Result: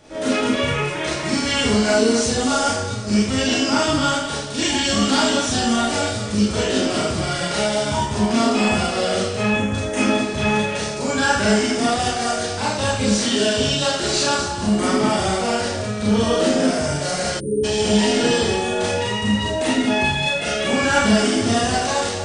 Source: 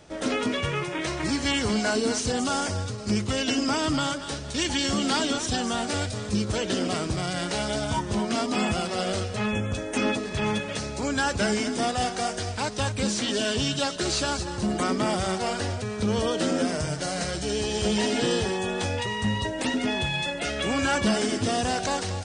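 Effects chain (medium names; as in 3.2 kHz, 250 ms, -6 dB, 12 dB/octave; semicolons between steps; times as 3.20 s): Schroeder reverb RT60 0.57 s, combs from 27 ms, DRR -6 dB; spectral selection erased 17.40–17.64 s, 540–8700 Hz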